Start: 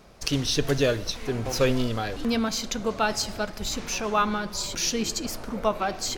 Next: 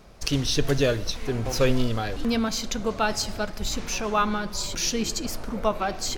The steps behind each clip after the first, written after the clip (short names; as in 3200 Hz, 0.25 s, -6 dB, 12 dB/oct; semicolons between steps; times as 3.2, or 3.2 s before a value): low shelf 85 Hz +6.5 dB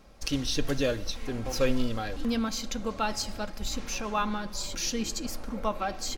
comb 3.7 ms, depth 36%; gain -5.5 dB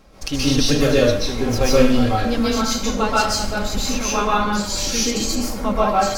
plate-style reverb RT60 0.61 s, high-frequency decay 0.8×, pre-delay 0.115 s, DRR -7 dB; gain +4.5 dB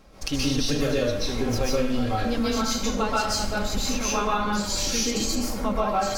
compressor 4:1, threshold -18 dBFS, peak gain reduction 9.5 dB; gain -2.5 dB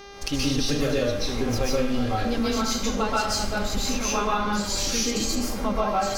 buzz 400 Hz, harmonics 16, -44 dBFS -4 dB/oct